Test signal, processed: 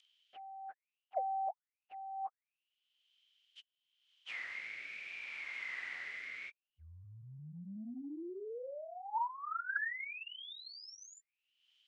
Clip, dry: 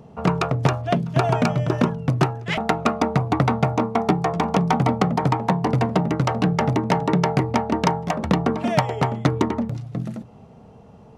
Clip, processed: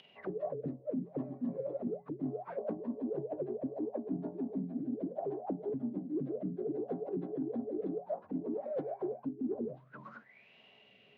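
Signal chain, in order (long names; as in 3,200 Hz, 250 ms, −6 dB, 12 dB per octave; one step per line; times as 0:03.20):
partials spread apart or drawn together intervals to 87%
rotating-speaker cabinet horn 0.65 Hz
envelope filter 260–3,100 Hz, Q 16, down, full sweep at −20 dBFS
reversed playback
downward compressor 10 to 1, threshold −47 dBFS
reversed playback
low-pass filter 6,500 Hz 12 dB per octave
in parallel at −2.5 dB: upward compression, threshold −52 dBFS
on the sum: level +8.5 dB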